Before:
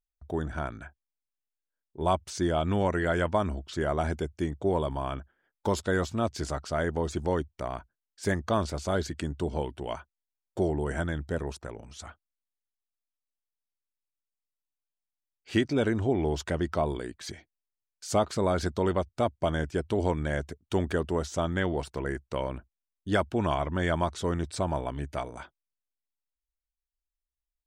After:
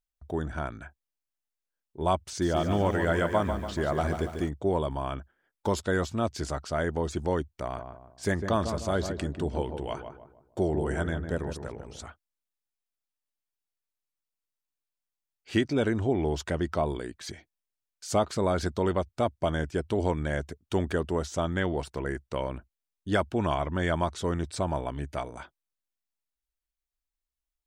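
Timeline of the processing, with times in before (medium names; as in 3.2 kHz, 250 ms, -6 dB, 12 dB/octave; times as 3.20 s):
2.18–4.49 s: bit-crushed delay 143 ms, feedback 55%, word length 9-bit, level -7.5 dB
7.62–12.07 s: filtered feedback delay 153 ms, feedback 41%, low-pass 1.2 kHz, level -6.5 dB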